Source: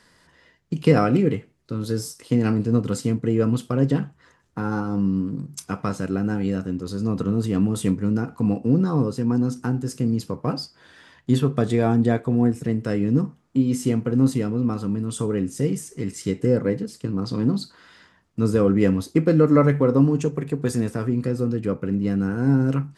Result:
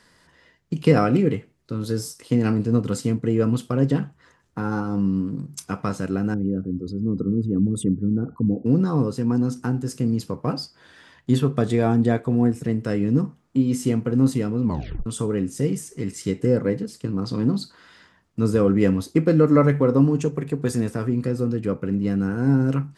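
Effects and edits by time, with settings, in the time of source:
6.34–8.66 s: resonances exaggerated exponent 2
14.64 s: tape stop 0.42 s

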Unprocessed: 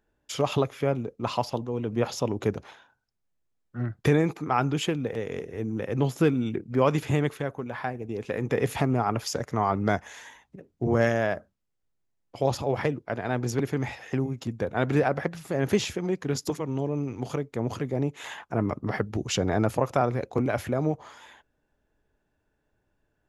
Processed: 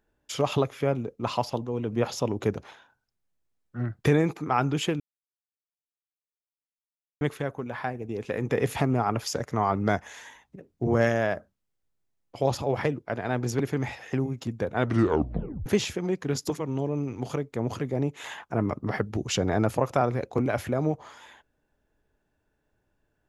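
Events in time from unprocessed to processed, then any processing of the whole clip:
5.00–7.21 s: mute
14.80 s: tape stop 0.86 s

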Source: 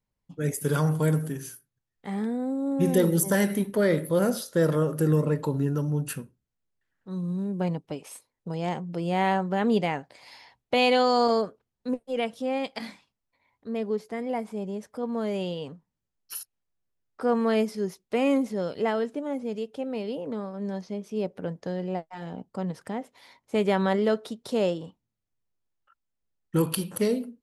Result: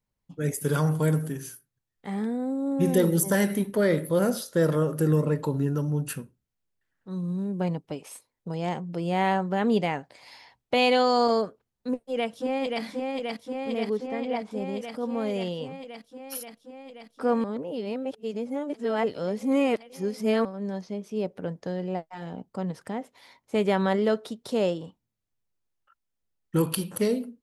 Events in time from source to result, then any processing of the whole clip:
11.88–12.83 s: echo throw 530 ms, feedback 80%, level -3 dB
13.97–14.51 s: distance through air 70 m
17.44–20.45 s: reverse

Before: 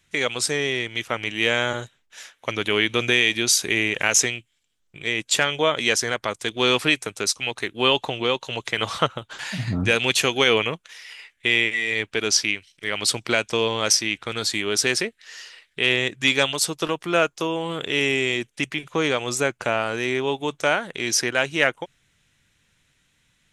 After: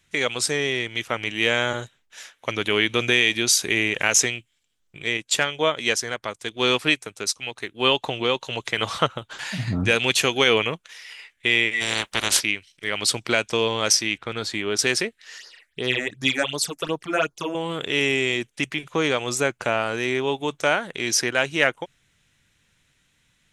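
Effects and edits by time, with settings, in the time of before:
5.17–8.04 s: upward expansion, over -29 dBFS
11.80–12.39 s: spectral peaks clipped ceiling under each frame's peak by 27 dB
14.18–14.79 s: treble shelf 4.4 kHz -11.5 dB
15.38–17.55 s: phase shifter stages 8, 2.7 Hz, lowest notch 120–2800 Hz

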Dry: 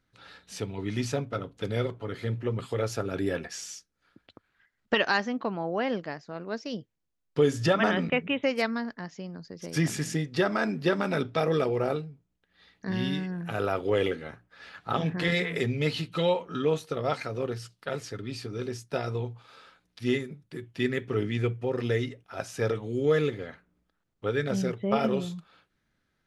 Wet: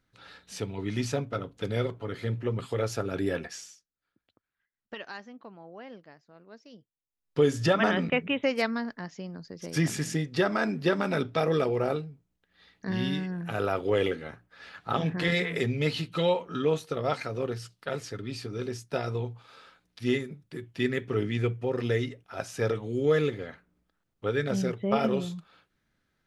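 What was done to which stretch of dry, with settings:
3.46–7.39 s: dip -16 dB, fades 0.31 s

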